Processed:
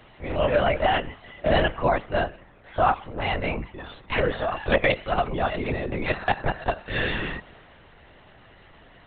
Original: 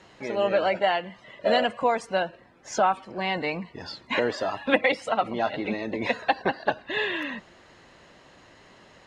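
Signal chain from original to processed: LPC vocoder at 8 kHz whisper; transient shaper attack -2 dB, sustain +3 dB; gain +2 dB

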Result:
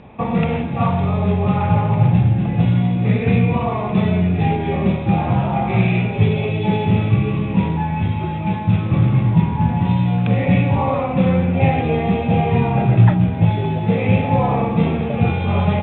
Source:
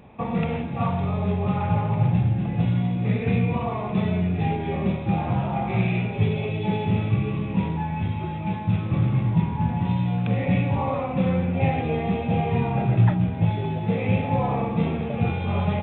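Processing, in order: LPF 4900 Hz 24 dB/oct; gain +6.5 dB

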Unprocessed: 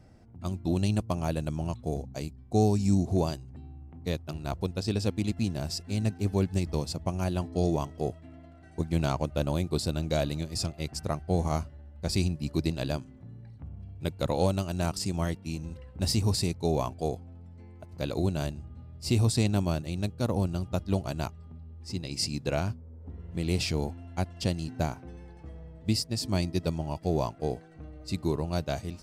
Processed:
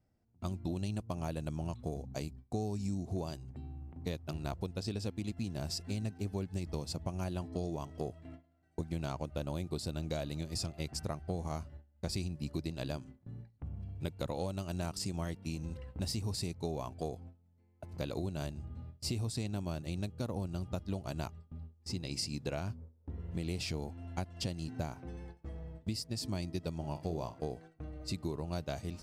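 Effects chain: gate with hold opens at -38 dBFS; compressor 6:1, threshold -34 dBFS, peak gain reduction 14 dB; 26.75–27.4 flutter echo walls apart 8 m, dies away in 0.26 s

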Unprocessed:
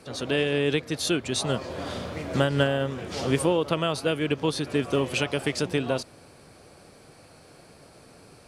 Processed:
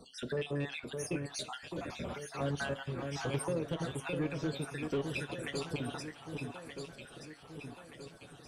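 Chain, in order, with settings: random spectral dropouts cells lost 59%; low shelf 380 Hz +4.5 dB; in parallel at -2 dB: compressor, threshold -33 dBFS, peak gain reduction 15.5 dB; on the sum: flange 0.41 Hz, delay 4.2 ms, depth 3.2 ms, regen -43%; soft clip -20.5 dBFS, distortion -14 dB; echo with dull and thin repeats by turns 0.613 s, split 1800 Hz, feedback 72%, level -5 dB; on a send at -13 dB: reverb RT60 0.35 s, pre-delay 11 ms; on the sum: gain -6.5 dB

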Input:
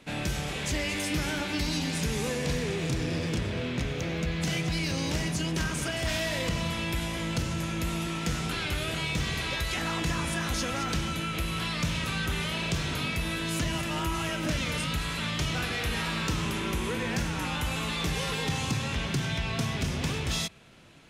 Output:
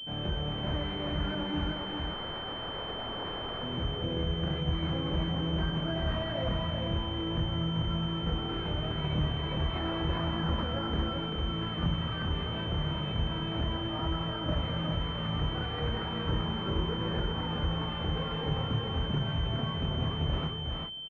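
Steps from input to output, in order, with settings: 1.72–3.63 wrapped overs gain 30 dB; chorus voices 4, 0.37 Hz, delay 26 ms, depth 1.4 ms; on a send: echo 0.391 s -3.5 dB; on the sum: pulse-width modulation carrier 3100 Hz

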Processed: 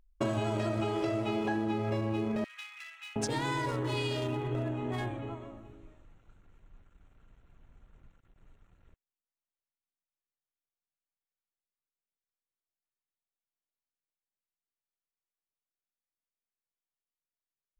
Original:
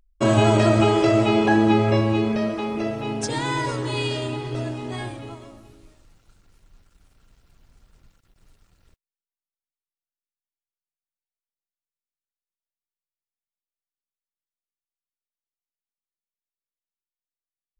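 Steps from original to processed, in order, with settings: Wiener smoothing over 9 samples; 2.44–3.16 inverse Chebyshev high-pass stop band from 530 Hz, stop band 60 dB; compressor 8:1, threshold -26 dBFS, peak gain reduction 13.5 dB; gain -2.5 dB

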